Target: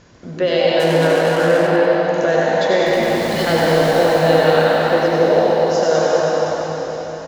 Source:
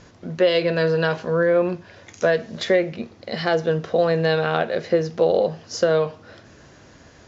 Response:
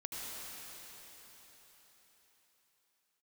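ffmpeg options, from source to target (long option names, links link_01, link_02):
-filter_complex "[0:a]asettb=1/sr,asplit=3[link_01][link_02][link_03];[link_01]atrim=end=2.864[link_04];[link_02]atrim=start=2.86:end=4.05,asetpts=PTS-STARTPTS,afade=type=in:duration=0.004:curve=qsin,afade=type=out:start_time=1.186:duration=0.004:curve=qsin,aeval=exprs='val(0)+0.5*0.0501*sgn(val(0))':channel_layout=same[link_05];[link_03]atrim=start=4.046[link_06];[link_04][link_05]acrossfade=duration=0.004:curve1=hsin:curve2=qsin[link_07];[link_07][link_06]acrossfade=duration=0.004:curve1=qsin:curve2=hsin[link_08];[1:a]atrim=start_sample=2205[link_09];[link_08][link_09]afir=irnorm=-1:irlink=0,asplit=3[link_10][link_11][link_12];[link_10]afade=type=out:start_time=0.79:duration=0.02[link_13];[link_11]adynamicsmooth=sensitivity=6:basefreq=540,afade=type=in:start_time=0.79:duration=0.02,afade=type=out:start_time=1.66:duration=0.02[link_14];[link_12]afade=type=in:start_time=1.66:duration=0.02[link_15];[link_13][link_14][link_15]amix=inputs=3:normalize=0,asplit=7[link_16][link_17][link_18][link_19][link_20][link_21][link_22];[link_17]adelay=95,afreqshift=120,volume=-7dB[link_23];[link_18]adelay=190,afreqshift=240,volume=-12.8dB[link_24];[link_19]adelay=285,afreqshift=360,volume=-18.7dB[link_25];[link_20]adelay=380,afreqshift=480,volume=-24.5dB[link_26];[link_21]adelay=475,afreqshift=600,volume=-30.4dB[link_27];[link_22]adelay=570,afreqshift=720,volume=-36.2dB[link_28];[link_16][link_23][link_24][link_25][link_26][link_27][link_28]amix=inputs=7:normalize=0,volume=4dB"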